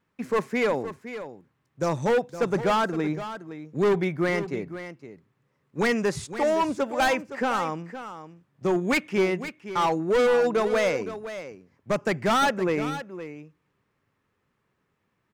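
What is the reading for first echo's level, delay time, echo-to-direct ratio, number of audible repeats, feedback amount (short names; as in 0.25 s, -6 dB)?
-12.0 dB, 0.515 s, -12.0 dB, 1, no steady repeat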